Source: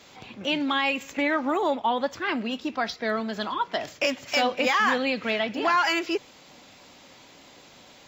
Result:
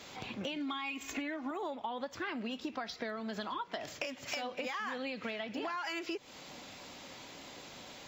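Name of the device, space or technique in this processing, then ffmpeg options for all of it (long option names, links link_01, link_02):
serial compression, peaks first: -filter_complex "[0:a]asettb=1/sr,asplit=3[link_01][link_02][link_03];[link_01]atrim=end=0.564[link_04];[link_02]atrim=start=0.56:end=1.51,asetpts=PTS-STARTPTS,afade=type=in:duration=0.004:curve=qsin,afade=type=out:start_time=0.946:duration=0.004:curve=qsin,aecho=1:1:2.8:0.83,atrim=end_sample=41895[link_05];[link_03]atrim=start=1.506[link_06];[link_04][link_05]acrossfade=duration=0.004:curve1=hsin:curve2=qsin[link_07];[link_07][link_06]acrossfade=duration=0.004:curve1=qsin:curve2=hsin,acompressor=threshold=-32dB:ratio=6,acompressor=threshold=-38dB:ratio=2.5,volume=1dB"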